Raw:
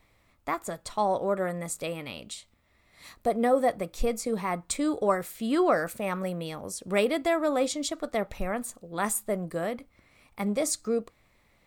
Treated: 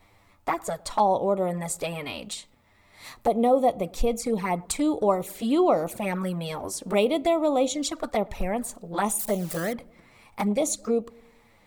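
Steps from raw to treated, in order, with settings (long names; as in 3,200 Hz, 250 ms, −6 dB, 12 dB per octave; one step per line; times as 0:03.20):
0:09.19–0:09.73: spike at every zero crossing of −28 dBFS
flanger swept by the level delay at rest 10.7 ms, full sweep at −24.5 dBFS
in parallel at +1 dB: downward compressor, threshold −37 dBFS, peak gain reduction 17 dB
on the sum: parametric band 870 Hz +6.5 dB 0.45 octaves
feedback echo with a low-pass in the loop 107 ms, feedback 58%, low-pass 860 Hz, level −22.5 dB
level +1.5 dB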